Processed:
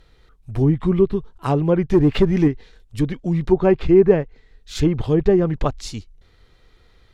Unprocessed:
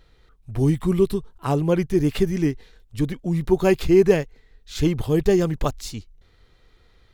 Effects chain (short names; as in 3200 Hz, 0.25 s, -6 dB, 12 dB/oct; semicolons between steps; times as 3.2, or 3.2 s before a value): treble ducked by the level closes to 1500 Hz, closed at -14.5 dBFS; 1.89–2.48 sample leveller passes 1; gain +2.5 dB